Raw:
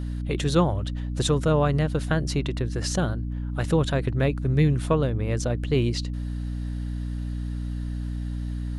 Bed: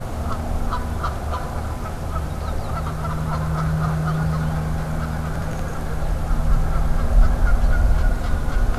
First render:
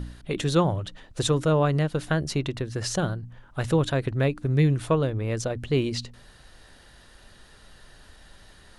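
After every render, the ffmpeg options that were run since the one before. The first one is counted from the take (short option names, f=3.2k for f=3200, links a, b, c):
-af "bandreject=f=60:t=h:w=4,bandreject=f=120:t=h:w=4,bandreject=f=180:t=h:w=4,bandreject=f=240:t=h:w=4,bandreject=f=300:t=h:w=4"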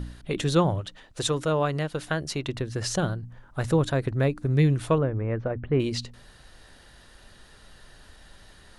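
-filter_complex "[0:a]asettb=1/sr,asplit=3[a][b][c];[a]atrim=end=0.814[d];[b]atrim=start=0.81:end=2.49,asetpts=PTS-STARTPTS,afade=t=in:d=0.004:c=qsin,afade=t=out:st=1.676:d=0.004:c=qsin,lowshelf=f=340:g=-7[e];[c]atrim=start=2.486[f];[d][e]acrossfade=d=0.004:c1=hsin:c2=qsin[g];[g][f]acrossfade=d=0.004:c1=qsin:c2=hsin,asettb=1/sr,asplit=3[h][i][j];[h]atrim=end=3.264[k];[i]atrim=start=3.26:end=4.48,asetpts=PTS-STARTPTS,afade=t=in:d=0.004:c=qsin,afade=t=out:st=1.216:d=0.004:c=qsin,equalizer=f=3k:t=o:w=0.77:g=-5[l];[j]atrim=start=4.476[m];[k][l]acrossfade=d=0.004:c1=hsin:c2=qsin[n];[n][m]acrossfade=d=0.004:c1=qsin:c2=hsin,asettb=1/sr,asplit=3[o][p][q];[o]atrim=end=4.984[r];[p]atrim=start=4.98:end=5.8,asetpts=PTS-STARTPTS,afade=t=in:d=0.004:c=qsin,afade=t=out:st=0.816:d=0.004:c=qsin,lowpass=f=2k:w=0.5412,lowpass=f=2k:w=1.3066[s];[q]atrim=start=5.796[t];[r][s]acrossfade=d=0.004:c1=hsin:c2=qsin[u];[u][t]acrossfade=d=0.004:c1=qsin:c2=hsin"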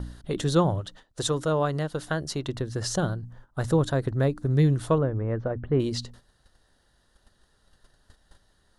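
-af "agate=range=-13dB:threshold=-46dB:ratio=16:detection=peak,equalizer=f=2.4k:w=2.8:g=-10.5"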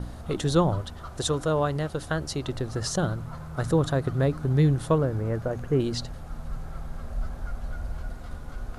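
-filter_complex "[1:a]volume=-16dB[a];[0:a][a]amix=inputs=2:normalize=0"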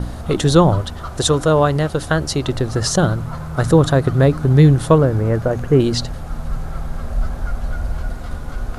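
-af "volume=10.5dB,alimiter=limit=-1dB:level=0:latency=1"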